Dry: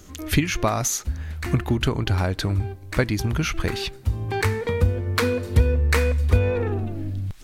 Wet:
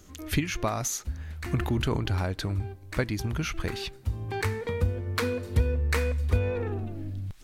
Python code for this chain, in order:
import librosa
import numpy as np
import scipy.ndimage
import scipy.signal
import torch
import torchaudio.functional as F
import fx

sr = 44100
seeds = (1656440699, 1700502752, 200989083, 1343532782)

y = fx.sustainer(x, sr, db_per_s=35.0, at=(1.56, 2.32))
y = y * librosa.db_to_amplitude(-6.5)